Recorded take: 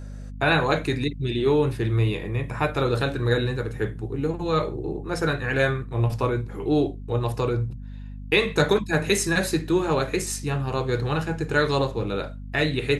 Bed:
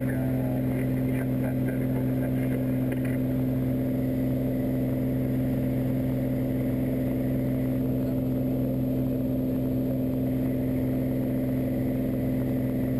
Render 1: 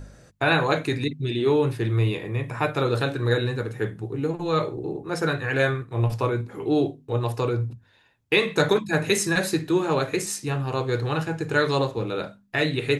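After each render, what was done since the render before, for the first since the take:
hum removal 50 Hz, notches 5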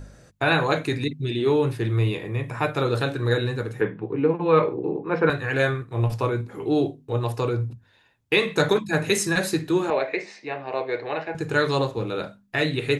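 0:03.81–0:05.30: loudspeaker in its box 140–3,200 Hz, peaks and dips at 180 Hz +6 dB, 290 Hz +5 dB, 480 Hz +7 dB, 1,000 Hz +9 dB, 1,600 Hz +3 dB, 2,400 Hz +7 dB
0:09.90–0:11.35: loudspeaker in its box 400–3,800 Hz, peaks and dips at 640 Hz +8 dB, 1,300 Hz −8 dB, 2,100 Hz +8 dB, 3,200 Hz −8 dB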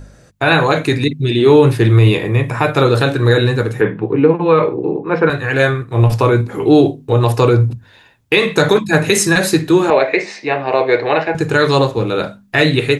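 automatic gain control
boost into a limiter +4.5 dB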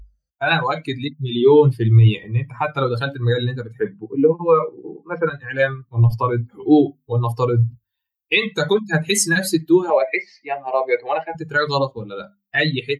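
spectral dynamics exaggerated over time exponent 2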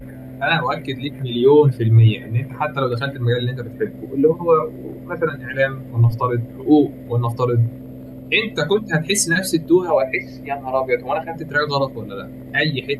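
mix in bed −8.5 dB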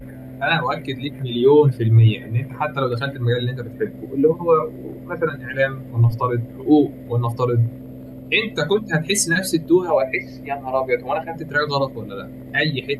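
level −1 dB

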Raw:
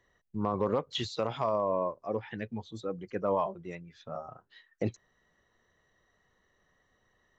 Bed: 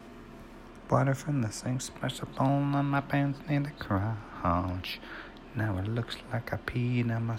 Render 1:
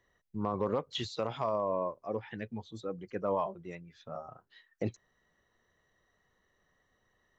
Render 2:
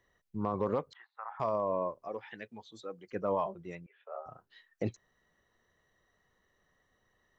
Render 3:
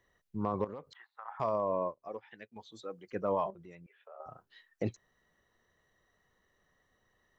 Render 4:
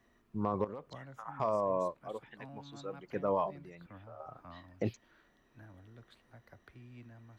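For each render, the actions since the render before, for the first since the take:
level −2.5 dB
0:00.93–0:01.40: Chebyshev band-pass filter 800–1,800 Hz, order 3; 0:02.08–0:03.12: high-pass filter 630 Hz 6 dB per octave; 0:03.86–0:04.26: Chebyshev band-pass filter 390–3,000 Hz, order 5
0:00.64–0:01.28: downward compressor 4 to 1, threshold −41 dBFS; 0:01.86–0:02.56: expander for the loud parts, over −60 dBFS; 0:03.50–0:04.20: downward compressor 2.5 to 1, threshold −51 dBFS
mix in bed −24 dB

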